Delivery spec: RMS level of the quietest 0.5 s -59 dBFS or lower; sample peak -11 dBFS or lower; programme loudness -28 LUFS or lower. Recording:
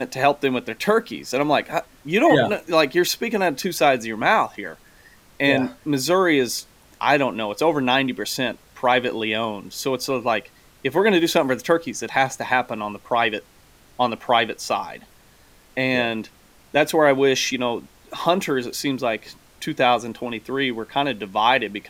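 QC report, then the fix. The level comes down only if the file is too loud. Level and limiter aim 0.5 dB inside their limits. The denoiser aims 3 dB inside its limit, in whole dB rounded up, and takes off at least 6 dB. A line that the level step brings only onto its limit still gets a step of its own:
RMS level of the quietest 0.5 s -52 dBFS: fail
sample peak -4.0 dBFS: fail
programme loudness -21.5 LUFS: fail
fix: denoiser 6 dB, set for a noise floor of -52 dBFS; gain -7 dB; limiter -11.5 dBFS

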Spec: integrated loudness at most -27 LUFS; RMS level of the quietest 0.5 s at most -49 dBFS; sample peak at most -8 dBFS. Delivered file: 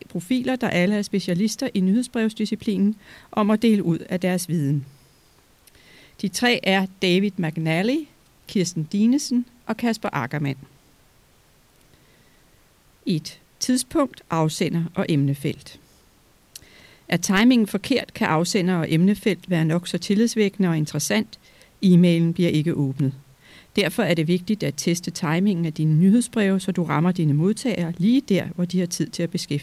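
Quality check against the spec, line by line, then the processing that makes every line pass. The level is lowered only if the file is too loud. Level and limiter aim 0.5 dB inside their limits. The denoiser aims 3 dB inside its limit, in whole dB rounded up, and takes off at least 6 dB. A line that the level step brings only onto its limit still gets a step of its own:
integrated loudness -22.0 LUFS: fail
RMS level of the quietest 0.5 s -57 dBFS: OK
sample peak -6.0 dBFS: fail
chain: gain -5.5 dB

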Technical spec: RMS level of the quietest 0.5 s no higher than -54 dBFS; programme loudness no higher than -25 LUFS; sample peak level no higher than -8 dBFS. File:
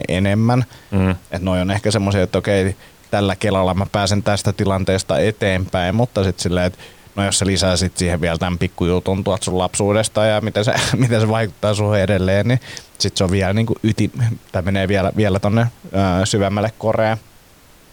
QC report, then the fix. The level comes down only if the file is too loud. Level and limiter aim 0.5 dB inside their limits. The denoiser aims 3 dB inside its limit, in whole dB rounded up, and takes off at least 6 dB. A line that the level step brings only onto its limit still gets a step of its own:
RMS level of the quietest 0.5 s -47 dBFS: fail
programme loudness -18.0 LUFS: fail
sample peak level -5.5 dBFS: fail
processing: gain -7.5 dB

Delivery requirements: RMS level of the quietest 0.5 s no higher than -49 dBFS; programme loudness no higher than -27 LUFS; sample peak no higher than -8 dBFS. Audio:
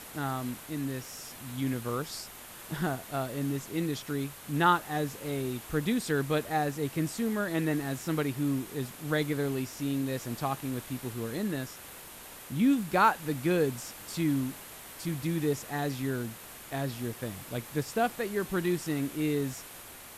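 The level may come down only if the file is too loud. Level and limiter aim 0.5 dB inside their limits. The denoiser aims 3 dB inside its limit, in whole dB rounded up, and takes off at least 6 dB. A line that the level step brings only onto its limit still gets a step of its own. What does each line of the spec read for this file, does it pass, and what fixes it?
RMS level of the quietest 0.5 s -47 dBFS: fail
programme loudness -31.5 LUFS: OK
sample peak -11.0 dBFS: OK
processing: denoiser 6 dB, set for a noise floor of -47 dBFS

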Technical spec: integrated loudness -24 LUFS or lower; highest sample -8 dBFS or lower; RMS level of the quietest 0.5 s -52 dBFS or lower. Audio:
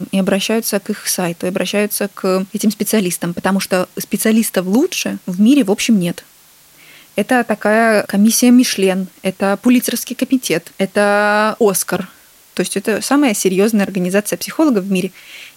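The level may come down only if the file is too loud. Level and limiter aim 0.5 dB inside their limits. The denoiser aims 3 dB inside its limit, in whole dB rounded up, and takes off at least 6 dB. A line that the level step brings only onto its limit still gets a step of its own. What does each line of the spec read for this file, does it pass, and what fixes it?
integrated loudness -15.5 LUFS: fail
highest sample -2.5 dBFS: fail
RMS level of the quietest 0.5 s -47 dBFS: fail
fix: gain -9 dB

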